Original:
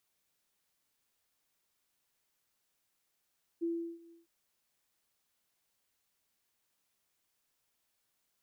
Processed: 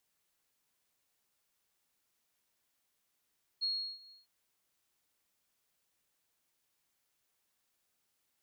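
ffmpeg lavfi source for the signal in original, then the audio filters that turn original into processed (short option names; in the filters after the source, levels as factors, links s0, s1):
-f lavfi -i "aevalsrc='0.0316*sin(2*PI*336*t)':d=0.657:s=44100,afade=t=in:d=0.023,afade=t=out:st=0.023:d=0.349:silence=0.0668,afade=t=out:st=0.5:d=0.157"
-af "afftfilt=real='real(if(lt(b,736),b+184*(1-2*mod(floor(b/184),2)),b),0)':imag='imag(if(lt(b,736),b+184*(1-2*mod(floor(b/184),2)),b),0)':win_size=2048:overlap=0.75"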